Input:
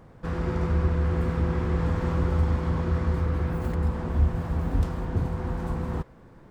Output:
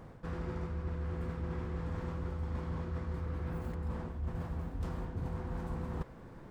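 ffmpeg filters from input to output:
-af "areverse,acompressor=threshold=-34dB:ratio=12,areverse"

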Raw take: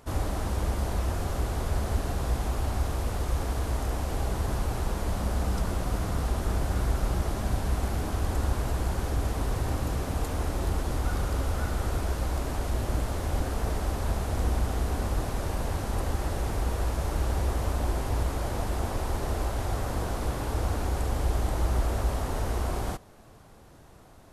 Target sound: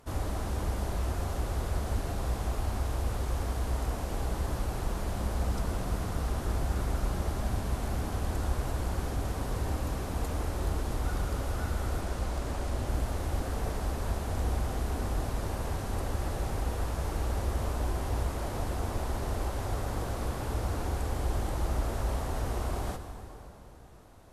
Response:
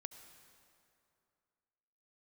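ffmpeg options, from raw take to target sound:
-filter_complex "[0:a]asettb=1/sr,asplit=3[a][b][c];[a]atrim=end=12.014[d];[b]atrim=start=12.01:end=12.87,asetpts=PTS-STARTPTS,afade=t=in:d=0.004:c=qsin,afade=t=out:st=0.856:d=0.004:c=qsin,equalizer=f=12k:t=o:w=0.27:g=-6[e];[c]atrim=start=12.866[f];[d][e]acrossfade=d=0.004:c1=hsin:c2=qsin[g];[g][f]acrossfade=d=0.004:c1=qsin:c2=hsin[h];[1:a]atrim=start_sample=2205,asetrate=33075,aresample=44100[i];[h][i]afir=irnorm=-1:irlink=0"

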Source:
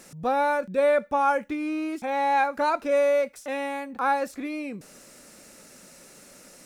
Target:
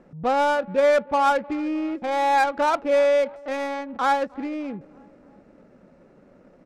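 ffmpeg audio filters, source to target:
-af "aecho=1:1:306|612|918|1224:0.075|0.0435|0.0252|0.0146,adynamicsmooth=sensitivity=3.5:basefreq=810,volume=3dB"

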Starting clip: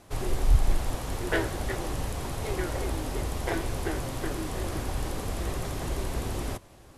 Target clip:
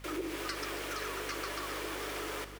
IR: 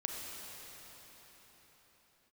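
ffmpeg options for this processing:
-filter_complex "[0:a]lowshelf=f=240:g=-8.5,acompressor=threshold=-32dB:ratio=6,asetrate=118629,aresample=44100,aecho=1:1:278:0.2,afreqshift=270,asplit=2[a][b];[1:a]atrim=start_sample=2205,asetrate=27783,aresample=44100[c];[b][c]afir=irnorm=-1:irlink=0,volume=-14.5dB[d];[a][d]amix=inputs=2:normalize=0,aeval=exprs='val(0)+0.00501*(sin(2*PI*50*n/s)+sin(2*PI*2*50*n/s)/2+sin(2*PI*3*50*n/s)/3+sin(2*PI*4*50*n/s)/4+sin(2*PI*5*50*n/s)/5)':c=same,volume=-3.5dB"

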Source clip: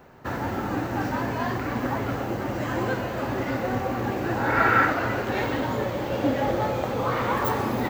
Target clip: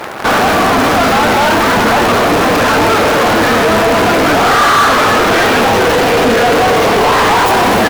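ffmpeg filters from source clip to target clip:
-filter_complex "[0:a]asetrate=38170,aresample=44100,atempo=1.15535,acrusher=bits=8:dc=4:mix=0:aa=0.000001,asplit=2[a][b];[b]highpass=f=720:p=1,volume=37dB,asoftclip=type=tanh:threshold=-8dB[c];[a][c]amix=inputs=2:normalize=0,lowpass=f=4.7k:p=1,volume=-6dB,volume=5dB"

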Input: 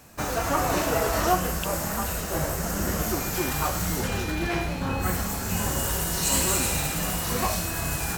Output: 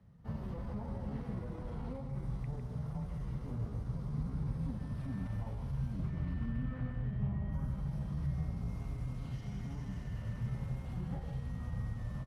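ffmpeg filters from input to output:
-filter_complex "[0:a]alimiter=limit=-18.5dB:level=0:latency=1:release=227,highpass=62,asetrate=32667,aresample=44100,acrossover=split=250 2900:gain=0.251 1 0.112[a][b][c];[a][b][c]amix=inputs=3:normalize=0,aecho=1:1:139:0.398,atempo=0.9,firequalizer=gain_entry='entry(160,0);entry(330,-26);entry(1200,-29)':delay=0.05:min_phase=1,volume=7dB"

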